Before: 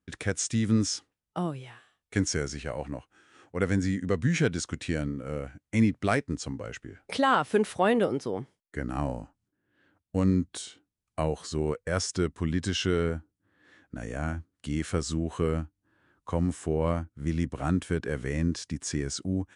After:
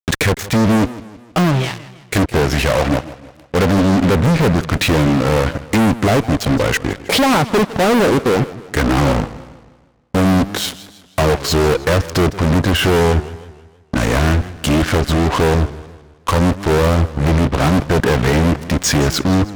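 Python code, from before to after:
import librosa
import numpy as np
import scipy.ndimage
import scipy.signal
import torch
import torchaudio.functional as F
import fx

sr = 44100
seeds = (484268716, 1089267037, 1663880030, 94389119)

y = fx.env_lowpass_down(x, sr, base_hz=730.0, full_db=-22.5)
y = fx.fuzz(y, sr, gain_db=43.0, gate_db=-46.0)
y = fx.echo_warbled(y, sr, ms=159, feedback_pct=46, rate_hz=2.8, cents=196, wet_db=-16.5)
y = y * 10.0 ** (2.0 / 20.0)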